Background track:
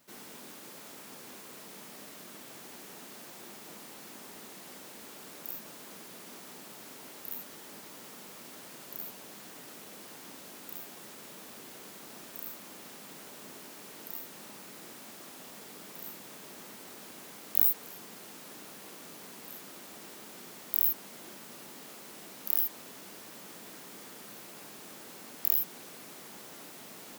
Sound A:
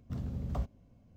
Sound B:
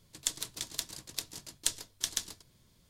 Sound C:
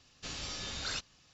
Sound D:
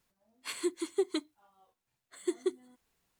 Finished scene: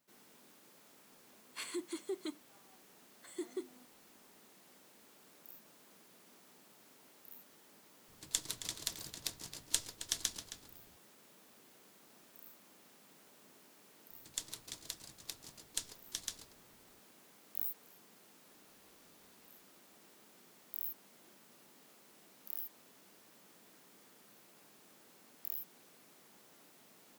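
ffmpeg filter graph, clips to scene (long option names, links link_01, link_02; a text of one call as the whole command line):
ffmpeg -i bed.wav -i cue0.wav -i cue1.wav -i cue2.wav -i cue3.wav -filter_complex "[2:a]asplit=2[link_01][link_02];[0:a]volume=-14.5dB[link_03];[4:a]alimiter=level_in=4dB:limit=-24dB:level=0:latency=1:release=13,volume=-4dB[link_04];[link_01]asplit=2[link_05][link_06];[link_06]adelay=268.2,volume=-9dB,highshelf=frequency=4000:gain=-6.04[link_07];[link_05][link_07]amix=inputs=2:normalize=0[link_08];[3:a]acompressor=threshold=-57dB:ratio=6:attack=3.2:release=140:knee=1:detection=peak[link_09];[link_04]atrim=end=3.19,asetpts=PTS-STARTPTS,volume=-3.5dB,afade=type=in:duration=0.004:curve=hsin,afade=type=out:start_time=3.186:duration=0.004:curve=hsin,adelay=1110[link_10];[link_08]atrim=end=2.89,asetpts=PTS-STARTPTS,volume=-3dB,afade=type=in:duration=0.004:curve=hsin,afade=type=out:start_time=2.886:duration=0.004:curve=hsin,adelay=8080[link_11];[link_02]atrim=end=2.89,asetpts=PTS-STARTPTS,volume=-8.5dB,afade=type=in:duration=0.004:curve=hsin,afade=type=out:start_time=2.886:duration=0.004:curve=hsin,adelay=14110[link_12];[link_09]atrim=end=1.33,asetpts=PTS-STARTPTS,volume=-17dB,afade=type=in:duration=0.004:curve=hsin,afade=type=out:start_time=1.326:duration=0.004:curve=hsin,adelay=18470[link_13];[link_03][link_10][link_11][link_12][link_13]amix=inputs=5:normalize=0" out.wav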